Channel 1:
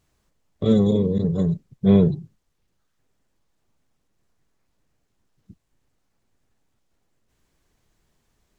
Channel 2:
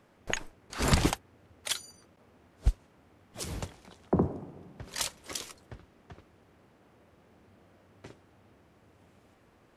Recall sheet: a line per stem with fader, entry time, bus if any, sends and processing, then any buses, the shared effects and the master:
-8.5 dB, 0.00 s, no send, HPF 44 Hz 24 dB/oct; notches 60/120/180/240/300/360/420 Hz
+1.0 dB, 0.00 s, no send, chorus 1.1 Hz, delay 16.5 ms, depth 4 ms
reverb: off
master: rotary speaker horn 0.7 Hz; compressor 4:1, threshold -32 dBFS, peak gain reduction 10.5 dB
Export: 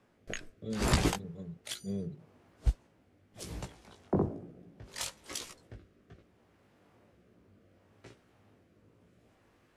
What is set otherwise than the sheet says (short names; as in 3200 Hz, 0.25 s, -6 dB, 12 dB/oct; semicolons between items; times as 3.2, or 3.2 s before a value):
stem 1 -8.5 dB -> -19.5 dB; master: missing compressor 4:1, threshold -32 dBFS, peak gain reduction 10.5 dB